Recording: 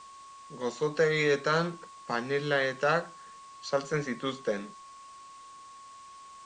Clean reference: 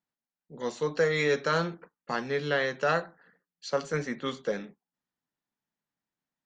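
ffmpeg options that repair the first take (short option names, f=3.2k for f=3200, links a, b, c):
-af "bandreject=f=1.1k:w=30,afftdn=nr=30:nf=-50"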